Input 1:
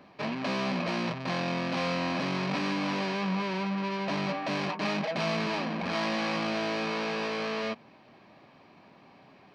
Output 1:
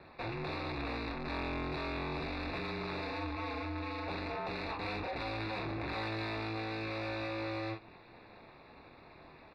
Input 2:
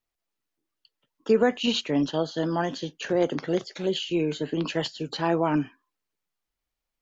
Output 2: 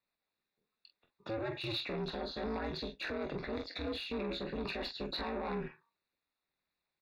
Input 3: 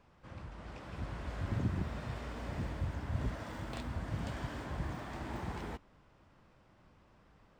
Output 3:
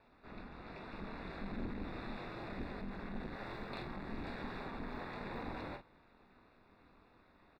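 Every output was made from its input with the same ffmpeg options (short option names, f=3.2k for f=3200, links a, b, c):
-filter_complex "[0:a]asplit=2[a][b];[b]acompressor=threshold=-36dB:ratio=6,volume=-2dB[c];[a][c]amix=inputs=2:normalize=0,alimiter=limit=-19dB:level=0:latency=1:release=28,asplit=2[d][e];[e]aecho=0:1:23|45:0.355|0.335[f];[d][f]amix=inputs=2:normalize=0,asoftclip=type=tanh:threshold=-28dB,highpass=92,aeval=exprs='val(0)*sin(2*PI*110*n/s)':c=same,asuperstop=centerf=3100:order=4:qfactor=3.6,highshelf=f=4.9k:t=q:w=3:g=-10,volume=-3dB"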